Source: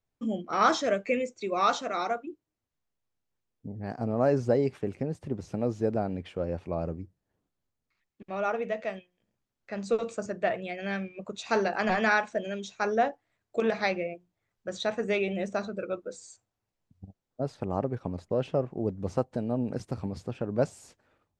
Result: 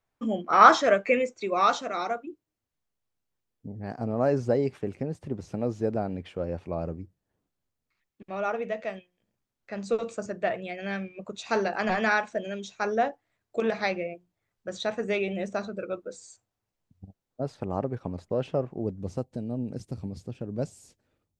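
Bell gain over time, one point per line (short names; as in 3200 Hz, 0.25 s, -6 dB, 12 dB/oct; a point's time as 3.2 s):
bell 1200 Hz 2.5 oct
1.23 s +9 dB
1.84 s 0 dB
18.72 s 0 dB
19.23 s -11.5 dB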